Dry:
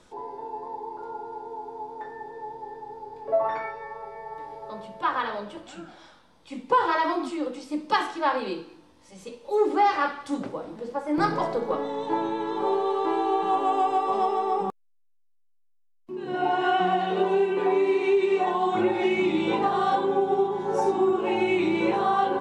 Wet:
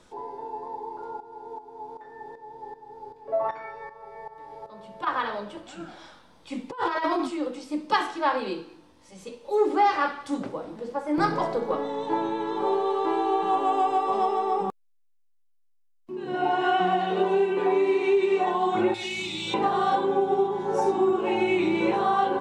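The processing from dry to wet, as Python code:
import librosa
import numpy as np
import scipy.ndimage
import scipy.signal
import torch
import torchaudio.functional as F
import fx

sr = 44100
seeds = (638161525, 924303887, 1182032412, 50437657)

y = fx.tremolo_shape(x, sr, shape='saw_up', hz=2.6, depth_pct=75, at=(1.2, 5.07))
y = fx.over_compress(y, sr, threshold_db=-26.0, ratio=-0.5, at=(5.8, 7.27))
y = fx.curve_eq(y, sr, hz=(110.0, 220.0, 440.0, 1100.0, 1800.0, 4400.0), db=(0, -11, -16, -11, -7, 12), at=(18.94, 19.54))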